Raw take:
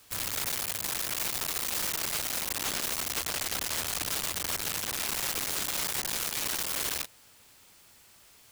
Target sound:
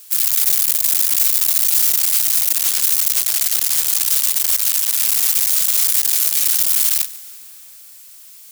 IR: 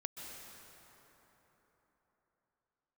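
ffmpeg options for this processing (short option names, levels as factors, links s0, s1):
-filter_complex "[0:a]crystalizer=i=9:c=0,asplit=2[s0][s1];[1:a]atrim=start_sample=2205,adelay=144[s2];[s1][s2]afir=irnorm=-1:irlink=0,volume=0.178[s3];[s0][s3]amix=inputs=2:normalize=0,volume=0.531"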